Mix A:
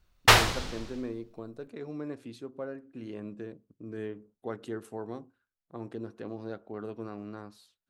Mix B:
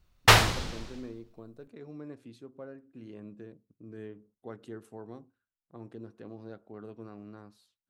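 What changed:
speech -7.5 dB; master: add peaking EQ 130 Hz +4 dB 2.1 oct

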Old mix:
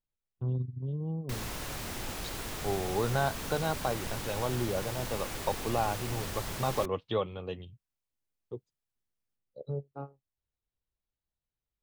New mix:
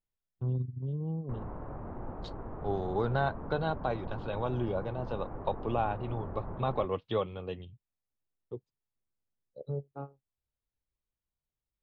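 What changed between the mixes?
background: add low-pass 1.1 kHz 24 dB/octave; master: add distance through air 120 m

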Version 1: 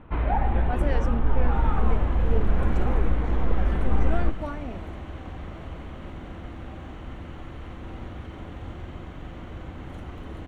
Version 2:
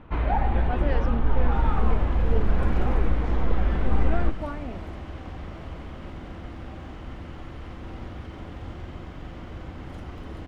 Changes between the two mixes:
speech: add low-pass 3.5 kHz 12 dB/octave; first sound: remove distance through air 110 m; master: add peaking EQ 5 kHz +12 dB 0.22 oct

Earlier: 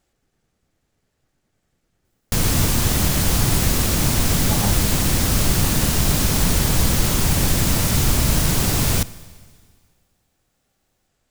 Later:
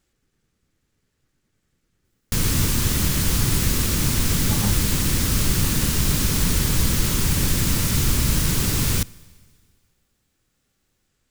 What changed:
background: send -6.5 dB; master: add peaking EQ 700 Hz -10 dB 0.73 oct

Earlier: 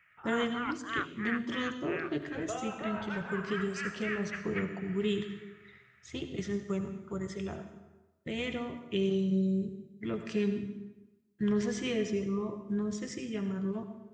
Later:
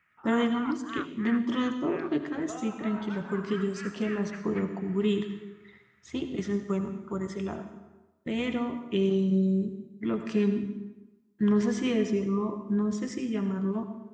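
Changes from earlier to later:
background -7.5 dB; master: add graphic EQ 125/250/1000 Hz -4/+9/+8 dB

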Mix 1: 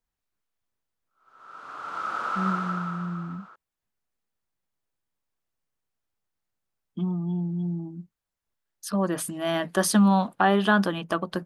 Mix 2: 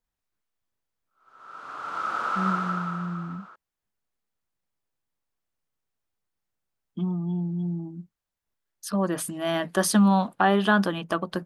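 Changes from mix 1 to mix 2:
background +4.0 dB; reverb: off

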